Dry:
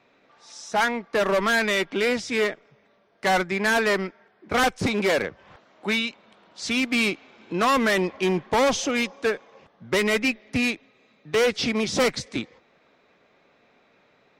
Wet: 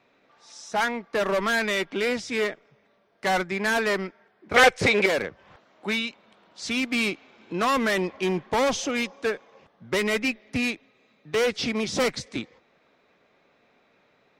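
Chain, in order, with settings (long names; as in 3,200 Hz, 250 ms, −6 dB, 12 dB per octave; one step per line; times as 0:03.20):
0:04.56–0:05.06: octave-band graphic EQ 125/250/500/2,000/4,000/8,000 Hz +4/−5/+11/+11/+4/+4 dB
level −2.5 dB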